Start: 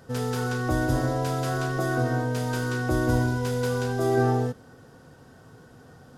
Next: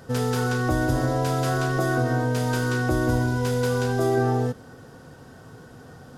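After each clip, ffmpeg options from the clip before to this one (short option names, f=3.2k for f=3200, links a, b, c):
-af "acompressor=threshold=-25dB:ratio=2.5,volume=5dB"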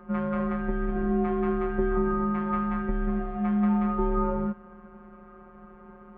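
-af "afftfilt=real='hypot(re,im)*cos(PI*b)':imag='0':win_size=1024:overlap=0.75,highpass=f=380:t=q:w=0.5412,highpass=f=380:t=q:w=1.307,lowpass=f=2.3k:t=q:w=0.5176,lowpass=f=2.3k:t=q:w=0.7071,lowpass=f=2.3k:t=q:w=1.932,afreqshift=-310,volume=5.5dB"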